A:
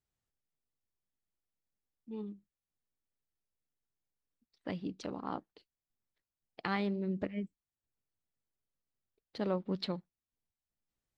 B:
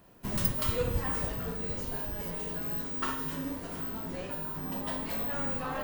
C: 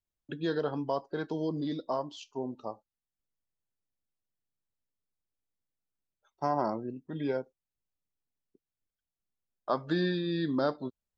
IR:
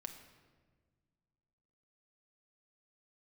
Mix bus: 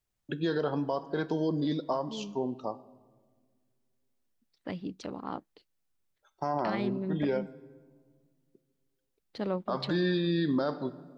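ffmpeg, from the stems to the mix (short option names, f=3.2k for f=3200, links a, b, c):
-filter_complex "[0:a]volume=1.5dB[a];[2:a]volume=1.5dB,asplit=2[b][c];[c]volume=-4dB[d];[3:a]atrim=start_sample=2205[e];[d][e]afir=irnorm=-1:irlink=0[f];[a][b][f]amix=inputs=3:normalize=0,alimiter=limit=-20.5dB:level=0:latency=1:release=50"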